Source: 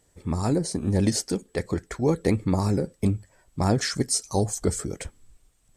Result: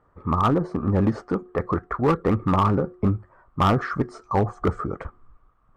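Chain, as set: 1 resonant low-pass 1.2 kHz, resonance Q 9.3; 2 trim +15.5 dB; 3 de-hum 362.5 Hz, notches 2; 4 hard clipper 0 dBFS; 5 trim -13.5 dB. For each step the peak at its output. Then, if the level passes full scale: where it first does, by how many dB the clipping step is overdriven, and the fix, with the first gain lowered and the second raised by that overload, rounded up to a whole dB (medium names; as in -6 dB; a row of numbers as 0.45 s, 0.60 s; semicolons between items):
-6.0 dBFS, +9.5 dBFS, +9.5 dBFS, 0.0 dBFS, -13.5 dBFS; step 2, 9.5 dB; step 2 +5.5 dB, step 5 -3.5 dB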